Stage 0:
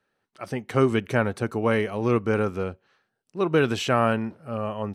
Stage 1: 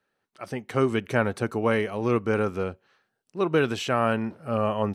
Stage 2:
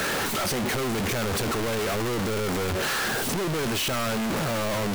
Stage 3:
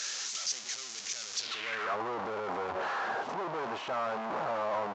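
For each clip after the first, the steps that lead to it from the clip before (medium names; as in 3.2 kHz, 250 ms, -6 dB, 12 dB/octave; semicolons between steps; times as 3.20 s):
bass shelf 180 Hz -3 dB; gain riding within 5 dB 0.5 s
one-bit comparator
resampled via 16 kHz; band-stop 880 Hz, Q 24; band-pass sweep 6.1 kHz -> 870 Hz, 1.35–1.98 s; trim +2.5 dB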